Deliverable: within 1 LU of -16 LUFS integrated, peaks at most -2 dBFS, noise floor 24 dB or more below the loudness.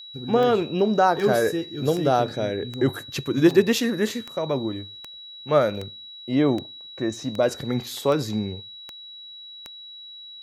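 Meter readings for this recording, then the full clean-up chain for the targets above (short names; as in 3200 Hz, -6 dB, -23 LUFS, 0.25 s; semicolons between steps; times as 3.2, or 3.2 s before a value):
clicks 13; steady tone 3900 Hz; tone level -39 dBFS; loudness -23.5 LUFS; peak -5.0 dBFS; loudness target -16.0 LUFS
-> de-click; notch 3900 Hz, Q 30; gain +7.5 dB; limiter -2 dBFS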